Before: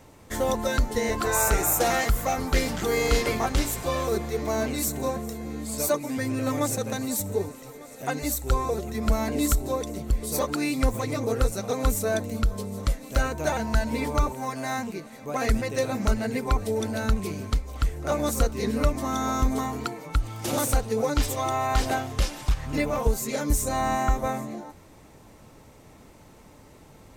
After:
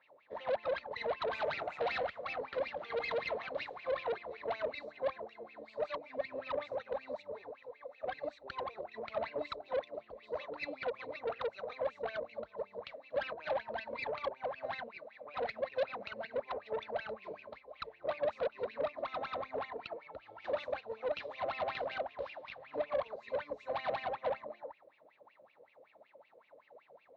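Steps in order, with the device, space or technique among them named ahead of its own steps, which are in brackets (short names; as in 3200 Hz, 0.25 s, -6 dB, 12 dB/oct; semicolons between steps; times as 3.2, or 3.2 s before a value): wah-wah guitar rig (wah 5.3 Hz 470–2700 Hz, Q 13; tube stage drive 39 dB, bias 0.55; speaker cabinet 84–4200 Hz, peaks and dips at 590 Hz +7 dB, 1400 Hz -3 dB, 4000 Hz +9 dB); gain +6.5 dB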